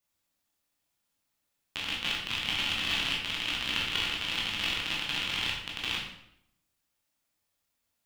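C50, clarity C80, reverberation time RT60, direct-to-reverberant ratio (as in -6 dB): 3.0 dB, 5.5 dB, 0.75 s, -4.0 dB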